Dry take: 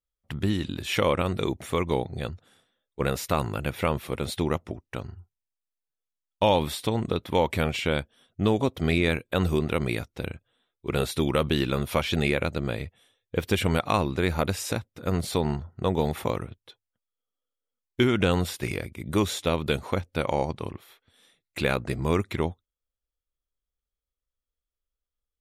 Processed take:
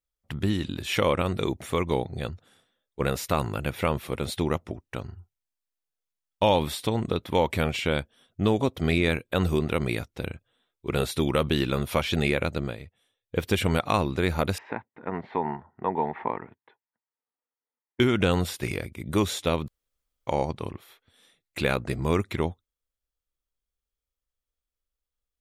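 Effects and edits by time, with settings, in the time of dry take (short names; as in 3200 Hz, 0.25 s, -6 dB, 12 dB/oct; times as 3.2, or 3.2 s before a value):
12.62–13.37 dip -8.5 dB, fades 0.14 s
14.58–18 speaker cabinet 260–2000 Hz, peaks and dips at 330 Hz -3 dB, 540 Hz -8 dB, 910 Hz +9 dB, 1300 Hz -6 dB, 1900 Hz +6 dB
19.68–20.27 room tone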